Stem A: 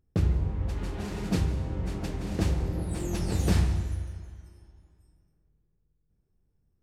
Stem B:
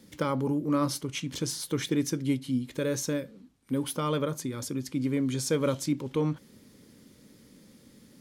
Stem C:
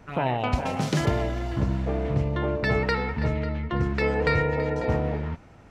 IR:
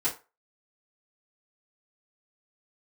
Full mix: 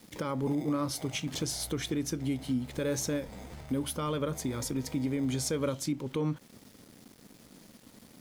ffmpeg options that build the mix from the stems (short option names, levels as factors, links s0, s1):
-filter_complex "[0:a]highpass=580,asoftclip=type=hard:threshold=0.02,volume=0.631,asplit=2[s0][s1];[s1]volume=0.075[s2];[1:a]aeval=exprs='val(0)*gte(abs(val(0)),0.002)':c=same,volume=1.19[s3];[2:a]aecho=1:1:1.4:0.65,acompressor=threshold=0.0708:ratio=6,adelay=350,volume=0.422[s4];[s0][s4]amix=inputs=2:normalize=0,acrusher=samples=31:mix=1:aa=0.000001,acompressor=threshold=0.00562:ratio=4,volume=1[s5];[3:a]atrim=start_sample=2205[s6];[s2][s6]afir=irnorm=-1:irlink=0[s7];[s3][s5][s7]amix=inputs=3:normalize=0,alimiter=limit=0.0794:level=0:latency=1:release=248"